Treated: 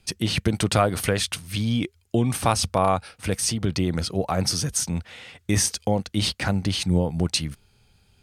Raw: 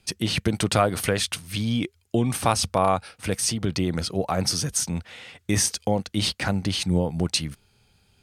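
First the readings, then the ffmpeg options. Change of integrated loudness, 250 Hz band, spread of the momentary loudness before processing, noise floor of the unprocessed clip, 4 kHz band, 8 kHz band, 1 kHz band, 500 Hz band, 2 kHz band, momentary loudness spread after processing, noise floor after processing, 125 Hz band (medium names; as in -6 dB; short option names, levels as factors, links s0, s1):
+0.5 dB, +0.5 dB, 6 LU, -64 dBFS, 0.0 dB, 0.0 dB, 0.0 dB, 0.0 dB, 0.0 dB, 5 LU, -62 dBFS, +2.0 dB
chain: -af "lowshelf=f=73:g=7"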